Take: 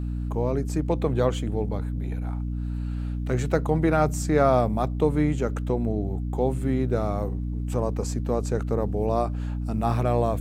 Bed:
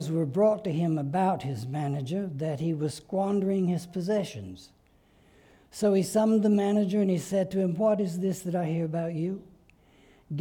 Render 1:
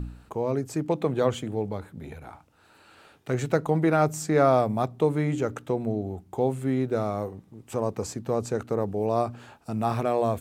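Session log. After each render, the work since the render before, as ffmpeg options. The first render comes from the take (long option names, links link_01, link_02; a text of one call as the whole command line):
ffmpeg -i in.wav -af "bandreject=frequency=60:width_type=h:width=4,bandreject=frequency=120:width_type=h:width=4,bandreject=frequency=180:width_type=h:width=4,bandreject=frequency=240:width_type=h:width=4,bandreject=frequency=300:width_type=h:width=4" out.wav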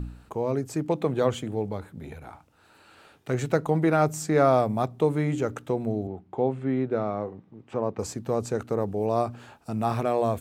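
ffmpeg -i in.wav -filter_complex "[0:a]asettb=1/sr,asplit=3[link_01][link_02][link_03];[link_01]atrim=end=6.074[link_04];[link_02]atrim=start=6.07:end=7.99,asetpts=PTS-STARTPTS,afade=type=in:duration=0.004:curve=qsin,afade=type=out:start_time=1.916:duration=0.004:curve=qsin,highpass=120,lowpass=2800[link_05];[link_03]atrim=start=7.986[link_06];[link_04][link_05]acrossfade=duration=0.004:curve1=hsin:curve2=qsin[link_07];[link_07][link_06]acrossfade=duration=0.004:curve1=qsin:curve2=hsin" out.wav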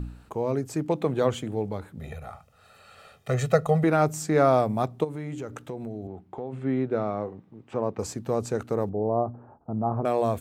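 ffmpeg -i in.wav -filter_complex "[0:a]asettb=1/sr,asplit=3[link_01][link_02][link_03];[link_01]atrim=end=1.994[link_04];[link_02]atrim=start=1.99:end=3.84,asetpts=PTS-STARTPTS,afade=type=in:duration=0.004:curve=qsin,afade=type=out:start_time=1.846:duration=0.004:curve=qsin,aecho=1:1:1.6:0.9,atrim=end_sample=81585[link_05];[link_03]atrim=start=3.836[link_06];[link_04][link_05]acrossfade=duration=0.004:curve1=hsin:curve2=qsin[link_07];[link_07][link_06]acrossfade=duration=0.004:curve1=qsin:curve2=hsin,asplit=3[link_08][link_09][link_10];[link_08]afade=type=out:start_time=5.03:duration=0.02[link_11];[link_09]acompressor=threshold=-33dB:ratio=3:attack=3.2:release=140:knee=1:detection=peak,afade=type=in:start_time=5.03:duration=0.02,afade=type=out:start_time=6.52:duration=0.02[link_12];[link_10]afade=type=in:start_time=6.52:duration=0.02[link_13];[link_11][link_12][link_13]amix=inputs=3:normalize=0,asettb=1/sr,asplit=3[link_14][link_15][link_16];[link_14]atrim=end=8.894[link_17];[link_15]atrim=start=8.89:end=10.05,asetpts=PTS-STARTPTS,afade=type=in:duration=0.004:curve=qsin,afade=type=out:start_time=1.156:duration=0.004:curve=qsin,lowpass=frequency=1000:width=0.5412,lowpass=frequency=1000:width=1.3066[link_18];[link_16]atrim=start=10.046[link_19];[link_17][link_18]acrossfade=duration=0.004:curve1=hsin:curve2=qsin[link_20];[link_20][link_19]acrossfade=duration=0.004:curve1=qsin:curve2=hsin" out.wav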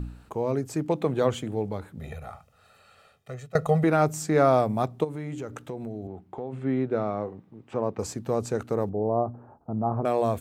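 ffmpeg -i in.wav -filter_complex "[0:a]asplit=2[link_01][link_02];[link_01]atrim=end=3.55,asetpts=PTS-STARTPTS,afade=type=out:start_time=2.31:duration=1.24:silence=0.0841395[link_03];[link_02]atrim=start=3.55,asetpts=PTS-STARTPTS,afade=type=in:duration=0.004:curve=hsin:silence=0.0841395[link_04];[link_03][link_04]concat=n=2:v=0:a=1" out.wav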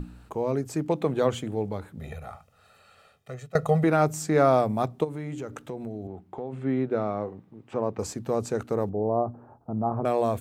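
ffmpeg -i in.wav -af "bandreject=frequency=60:width_type=h:width=6,bandreject=frequency=120:width_type=h:width=6" out.wav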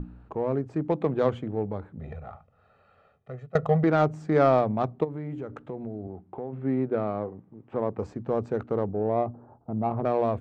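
ffmpeg -i in.wav -af "adynamicsmooth=sensitivity=1:basefreq=1600" out.wav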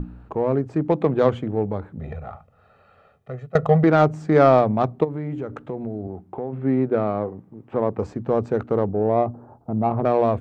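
ffmpeg -i in.wav -af "volume=6dB,alimiter=limit=-3dB:level=0:latency=1" out.wav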